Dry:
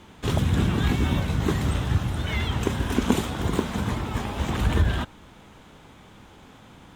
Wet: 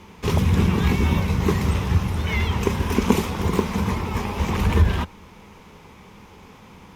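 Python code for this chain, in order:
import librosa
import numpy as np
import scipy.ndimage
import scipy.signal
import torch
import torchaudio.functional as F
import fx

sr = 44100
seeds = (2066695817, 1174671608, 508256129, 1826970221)

y = fx.ripple_eq(x, sr, per_octave=0.83, db=7)
y = y * librosa.db_to_amplitude(2.5)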